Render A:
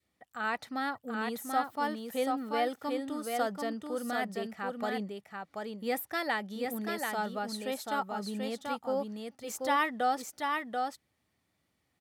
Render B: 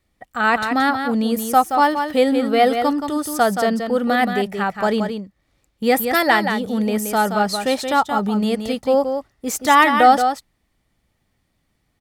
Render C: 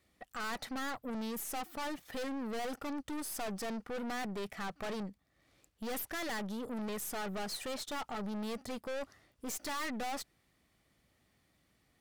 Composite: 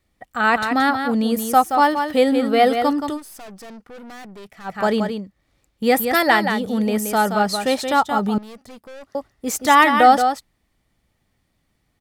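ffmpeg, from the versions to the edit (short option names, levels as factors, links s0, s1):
-filter_complex "[2:a]asplit=2[s0][s1];[1:a]asplit=3[s2][s3][s4];[s2]atrim=end=3.2[s5];[s0]atrim=start=3.1:end=4.74[s6];[s3]atrim=start=4.64:end=8.382[s7];[s1]atrim=start=8.378:end=9.152[s8];[s4]atrim=start=9.148[s9];[s5][s6]acrossfade=d=0.1:c1=tri:c2=tri[s10];[s10][s7]acrossfade=d=0.1:c1=tri:c2=tri[s11];[s11][s8]acrossfade=d=0.004:c1=hsin:c2=hsin[s12];[s12][s9]acrossfade=d=0.004:c1=hsin:c2=hsin"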